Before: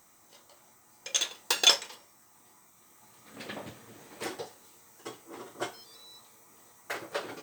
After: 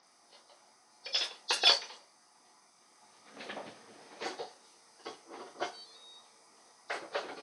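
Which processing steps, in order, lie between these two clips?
hearing-aid frequency compression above 3,400 Hz 1.5 to 1
loudspeaker in its box 250–8,900 Hz, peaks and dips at 320 Hz −3 dB, 740 Hz +4 dB, 4,600 Hz +7 dB
multiband delay without the direct sound lows, highs 30 ms, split 5,800 Hz
level −2 dB

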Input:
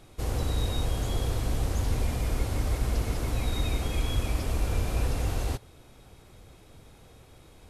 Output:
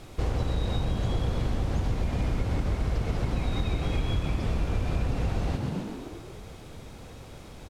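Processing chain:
on a send: echo with shifted repeats 129 ms, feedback 61%, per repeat +52 Hz, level −9 dB
on the sum: downward compressor, threshold −31 dBFS, peak gain reduction 10.5 dB
background noise violet −48 dBFS
Bessel low-pass filter 3,500 Hz, order 2
level +7.5 dB

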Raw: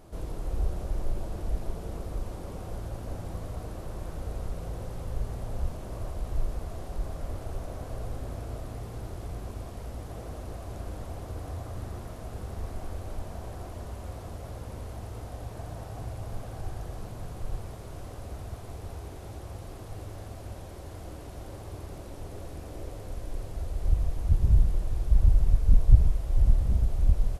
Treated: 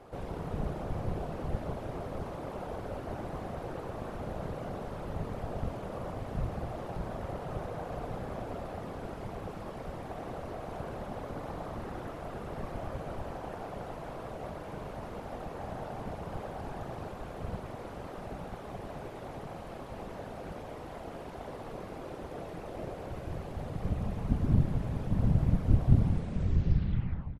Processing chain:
turntable brake at the end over 1.47 s
random phases in short frames
bass and treble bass −11 dB, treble −14 dB
echo with shifted repeats 202 ms, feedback 34%, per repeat +45 Hz, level −14 dB
level +4.5 dB

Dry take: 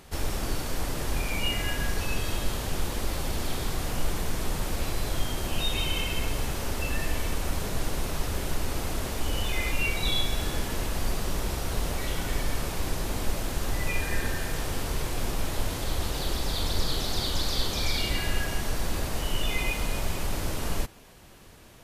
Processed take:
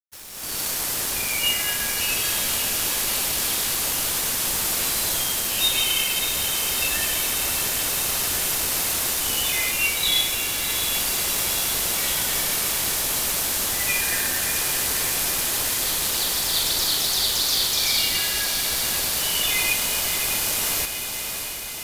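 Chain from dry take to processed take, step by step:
sub-octave generator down 1 octave, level −1 dB
spectral tilt +4 dB per octave
automatic gain control gain up to 13 dB
dead-zone distortion −28.5 dBFS
on a send: feedback delay with all-pass diffusion 649 ms, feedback 67%, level −7 dB
on the sum: level −7 dB

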